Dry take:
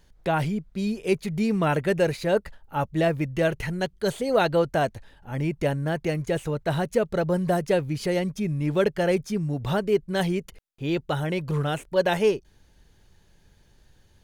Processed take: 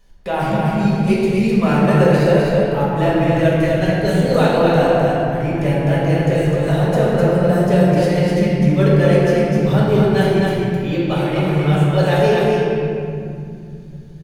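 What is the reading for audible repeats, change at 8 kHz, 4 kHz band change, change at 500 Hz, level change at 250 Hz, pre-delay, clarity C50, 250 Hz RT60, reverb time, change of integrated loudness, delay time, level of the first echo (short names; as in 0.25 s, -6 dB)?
1, +4.5 dB, +6.5 dB, +9.0 dB, +11.0 dB, 4 ms, -4.5 dB, 4.4 s, 2.4 s, +10.0 dB, 0.255 s, -1.5 dB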